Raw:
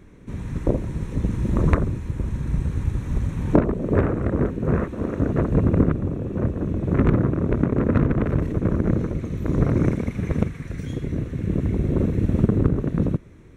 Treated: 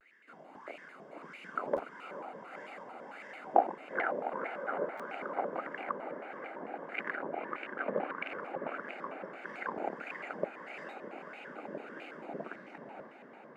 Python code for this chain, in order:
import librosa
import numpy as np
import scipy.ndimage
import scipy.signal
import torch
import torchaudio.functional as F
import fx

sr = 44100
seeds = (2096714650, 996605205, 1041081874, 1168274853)

y = fx.tape_stop_end(x, sr, length_s=1.31)
y = scipy.signal.sosfilt(scipy.signal.butter(6, 230.0, 'highpass', fs=sr, output='sos'), y)
y = fx.low_shelf(y, sr, hz=470.0, db=11.5)
y = fx.filter_lfo_bandpass(y, sr, shape='sine', hz=1.6, low_hz=690.0, high_hz=2200.0, q=7.5)
y = fx.high_shelf(y, sr, hz=2100.0, db=11.5)
y = fx.notch(y, sr, hz=2800.0, q=23.0)
y = y + 0.4 * np.pad(y, (int(1.6 * sr / 1000.0), 0))[:len(y)]
y = fx.echo_diffused(y, sr, ms=488, feedback_pct=74, wet_db=-10)
y = fx.buffer_glitch(y, sr, at_s=(1.75, 4.97), block=512, repeats=2)
y = fx.vibrato_shape(y, sr, shape='square', rate_hz=4.5, depth_cents=250.0)